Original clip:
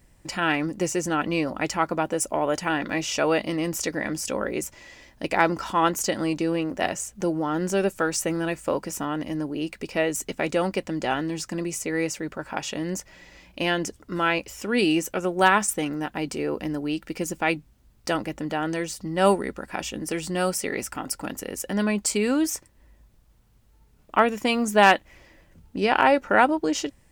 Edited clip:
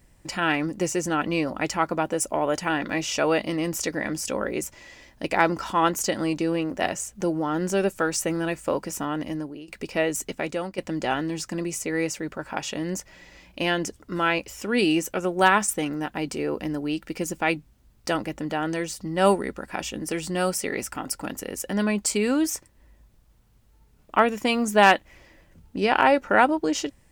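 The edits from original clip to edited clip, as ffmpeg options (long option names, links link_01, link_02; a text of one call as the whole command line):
ffmpeg -i in.wav -filter_complex "[0:a]asplit=3[link_01][link_02][link_03];[link_01]atrim=end=9.68,asetpts=PTS-STARTPTS,afade=type=out:start_time=9.29:duration=0.39:silence=0.0944061[link_04];[link_02]atrim=start=9.68:end=10.78,asetpts=PTS-STARTPTS,afade=type=in:duration=0.004:curve=hsin:silence=0.0944061,afade=type=out:start_time=0.54:duration=0.56:silence=0.281838[link_05];[link_03]atrim=start=10.78,asetpts=PTS-STARTPTS,afade=type=in:duration=0.004:curve=hsin:silence=0.281838[link_06];[link_04][link_05][link_06]concat=n=3:v=0:a=1" out.wav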